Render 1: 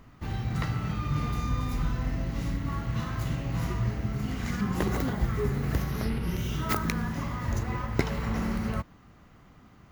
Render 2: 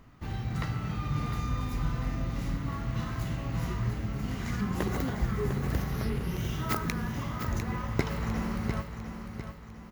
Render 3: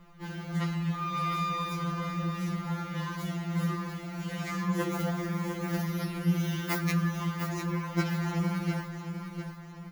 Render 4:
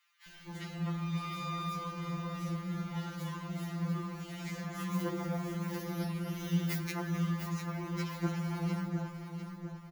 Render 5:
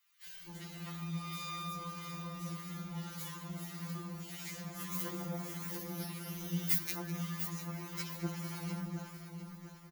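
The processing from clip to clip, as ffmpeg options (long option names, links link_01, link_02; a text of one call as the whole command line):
ffmpeg -i in.wav -af "aecho=1:1:701|1402|2103|2804|3505:0.376|0.158|0.0663|0.0278|0.0117,volume=-2.5dB" out.wav
ffmpeg -i in.wav -af "flanger=delay=9.5:depth=7.9:regen=-52:speed=1.4:shape=triangular,afftfilt=real='re*2.83*eq(mod(b,8),0)':imag='im*2.83*eq(mod(b,8),0)':win_size=2048:overlap=0.75,volume=8dB" out.wav
ffmpeg -i in.wav -filter_complex "[0:a]acrossover=split=1600[link_01][link_02];[link_01]adelay=260[link_03];[link_03][link_02]amix=inputs=2:normalize=0,volume=-4.5dB" out.wav
ffmpeg -i in.wav -filter_complex "[0:a]crystalizer=i=3:c=0,acrossover=split=1000[link_01][link_02];[link_01]aeval=exprs='val(0)*(1-0.5/2+0.5/2*cos(2*PI*1.7*n/s))':channel_layout=same[link_03];[link_02]aeval=exprs='val(0)*(1-0.5/2-0.5/2*cos(2*PI*1.7*n/s))':channel_layout=same[link_04];[link_03][link_04]amix=inputs=2:normalize=0,asplit=2[link_05][link_06];[link_06]adelay=204.1,volume=-11dB,highshelf=frequency=4000:gain=-4.59[link_07];[link_05][link_07]amix=inputs=2:normalize=0,volume=-4.5dB" out.wav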